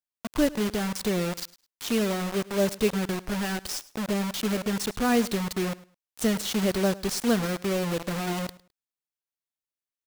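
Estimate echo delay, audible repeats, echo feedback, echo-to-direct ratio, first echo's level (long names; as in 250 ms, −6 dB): 105 ms, 2, 22%, −20.0 dB, −20.0 dB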